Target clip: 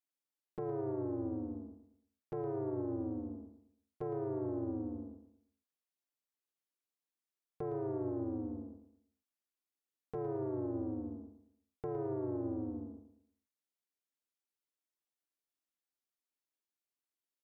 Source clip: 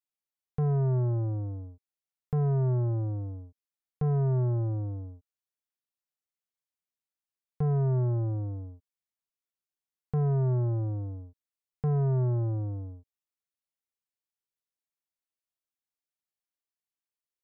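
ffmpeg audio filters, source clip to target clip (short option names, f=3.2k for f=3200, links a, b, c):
-filter_complex "[0:a]lowshelf=f=210:t=q:w=3:g=-10.5,asplit=2[a][b];[b]asetrate=35002,aresample=44100,atempo=1.25992,volume=-3dB[c];[a][c]amix=inputs=2:normalize=0,alimiter=limit=-24dB:level=0:latency=1,asplit=2[d][e];[e]aecho=0:1:112|224|336|448:0.299|0.107|0.0387|0.0139[f];[d][f]amix=inputs=2:normalize=0,volume=-5.5dB"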